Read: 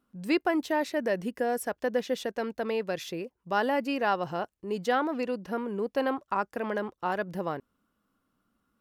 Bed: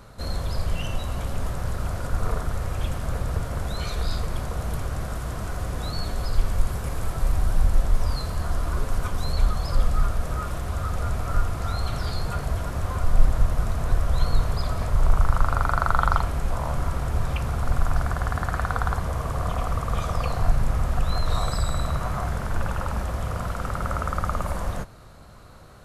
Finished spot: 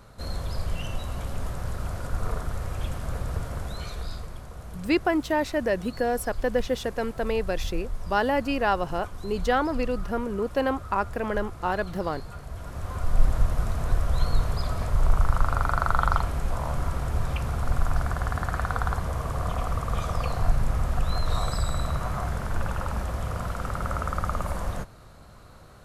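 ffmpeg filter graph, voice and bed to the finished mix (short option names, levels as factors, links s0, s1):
-filter_complex "[0:a]adelay=4600,volume=1.41[s0];[1:a]volume=2.11,afade=t=out:st=3.47:d=0.94:silence=0.375837,afade=t=in:st=12.49:d=0.82:silence=0.316228[s1];[s0][s1]amix=inputs=2:normalize=0"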